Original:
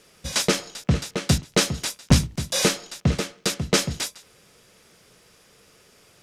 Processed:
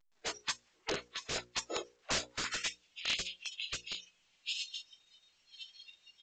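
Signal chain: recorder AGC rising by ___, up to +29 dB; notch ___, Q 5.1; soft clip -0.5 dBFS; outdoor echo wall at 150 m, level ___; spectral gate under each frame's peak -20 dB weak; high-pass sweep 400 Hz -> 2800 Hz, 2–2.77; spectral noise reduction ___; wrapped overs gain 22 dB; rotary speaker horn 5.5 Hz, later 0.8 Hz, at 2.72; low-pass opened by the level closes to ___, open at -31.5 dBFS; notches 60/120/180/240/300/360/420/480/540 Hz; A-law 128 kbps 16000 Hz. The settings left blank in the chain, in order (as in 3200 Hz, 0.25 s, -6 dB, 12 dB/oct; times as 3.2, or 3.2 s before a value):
39 dB/s, 5700 Hz, -10 dB, 21 dB, 2000 Hz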